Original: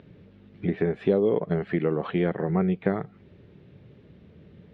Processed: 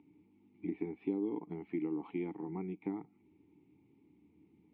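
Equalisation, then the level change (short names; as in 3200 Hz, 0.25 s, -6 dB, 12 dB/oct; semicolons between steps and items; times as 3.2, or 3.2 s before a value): vowel filter u; bell 80 Hz +8.5 dB 0.46 oct; -1.5 dB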